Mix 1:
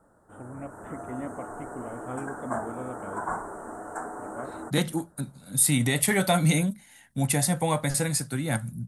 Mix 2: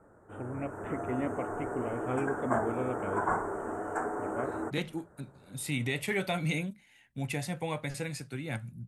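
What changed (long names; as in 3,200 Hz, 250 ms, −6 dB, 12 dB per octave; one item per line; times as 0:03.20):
second voice −11.5 dB
master: add graphic EQ with 15 bands 100 Hz +6 dB, 400 Hz +7 dB, 2,500 Hz +11 dB, 10,000 Hz −10 dB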